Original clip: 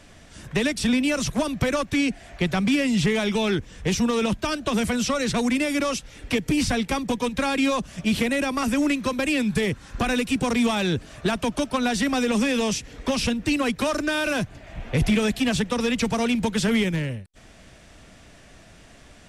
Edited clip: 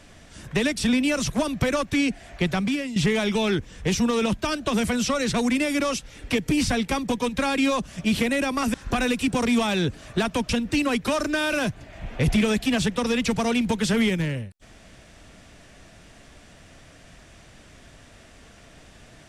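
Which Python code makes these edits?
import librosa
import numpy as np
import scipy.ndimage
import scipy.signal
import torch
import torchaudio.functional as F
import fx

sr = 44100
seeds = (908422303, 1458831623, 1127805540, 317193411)

y = fx.edit(x, sr, fx.fade_out_to(start_s=2.49, length_s=0.47, floor_db=-12.5),
    fx.cut(start_s=8.74, length_s=1.08),
    fx.cut(start_s=11.57, length_s=1.66), tone=tone)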